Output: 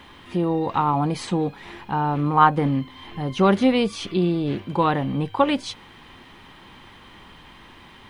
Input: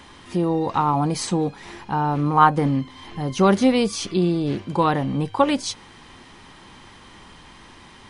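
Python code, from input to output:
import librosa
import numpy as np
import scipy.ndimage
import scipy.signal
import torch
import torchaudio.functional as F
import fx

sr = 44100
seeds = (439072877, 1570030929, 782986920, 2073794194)

y = fx.quant_dither(x, sr, seeds[0], bits=10, dither='none')
y = fx.high_shelf_res(y, sr, hz=4300.0, db=-7.0, q=1.5)
y = y * 10.0 ** (-1.0 / 20.0)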